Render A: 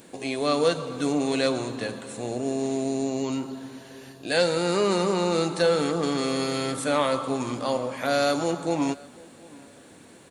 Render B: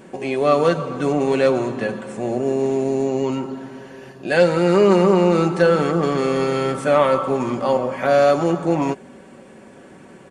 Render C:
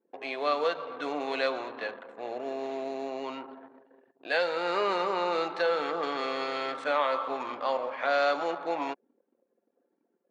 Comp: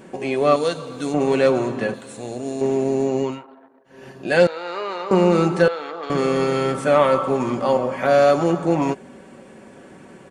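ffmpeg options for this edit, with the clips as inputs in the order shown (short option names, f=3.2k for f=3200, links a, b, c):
-filter_complex "[0:a]asplit=2[a][b];[2:a]asplit=3[c][d][e];[1:a]asplit=6[f][g][h][i][j][k];[f]atrim=end=0.562[l];[a]atrim=start=0.558:end=1.142[m];[g]atrim=start=1.138:end=1.942[n];[b]atrim=start=1.938:end=2.612[o];[h]atrim=start=2.608:end=3.45[p];[c]atrim=start=3.21:end=4.08[q];[i]atrim=start=3.84:end=4.472[r];[d]atrim=start=4.468:end=5.112[s];[j]atrim=start=5.108:end=5.682[t];[e]atrim=start=5.678:end=6.102[u];[k]atrim=start=6.098[v];[l][m]acrossfade=d=0.004:c1=hsin:c2=hsin[w];[w][n]acrossfade=d=0.004:c1=hsin:c2=hsin[x];[x][o]acrossfade=d=0.004:c1=hsin:c2=hsin[y];[y][p]acrossfade=d=0.004:c1=hsin:c2=hsin[z];[z][q]acrossfade=d=0.24:c1=tri:c2=tri[aa];[aa][r]acrossfade=d=0.24:c1=tri:c2=tri[ab];[ab][s]acrossfade=d=0.004:c1=hsin:c2=hsin[ac];[ac][t]acrossfade=d=0.004:c1=hsin:c2=hsin[ad];[ad][u]acrossfade=d=0.004:c1=hsin:c2=hsin[ae];[ae][v]acrossfade=d=0.004:c1=hsin:c2=hsin"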